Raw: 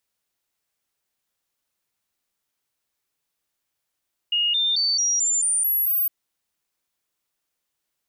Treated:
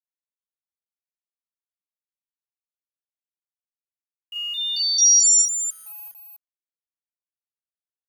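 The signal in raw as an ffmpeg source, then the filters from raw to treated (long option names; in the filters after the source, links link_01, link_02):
-f lavfi -i "aevalsrc='0.119*clip(min(mod(t,0.22),0.22-mod(t,0.22))/0.005,0,1)*sin(2*PI*2860*pow(2,floor(t/0.22)/3)*mod(t,0.22))':duration=1.76:sample_rate=44100"
-filter_complex "[0:a]firequalizer=gain_entry='entry(440,0);entry(680,-27);entry(990,5);entry(1500,-17);entry(2200,-15);entry(4200,-7);entry(6600,9);entry(9800,-30);entry(15000,-16)':delay=0.05:min_phase=1,aeval=exprs='val(0)*gte(abs(val(0)),0.00562)':channel_layout=same,asplit=2[link_01][link_02];[link_02]aecho=0:1:34.99|285.7:0.891|0.562[link_03];[link_01][link_03]amix=inputs=2:normalize=0"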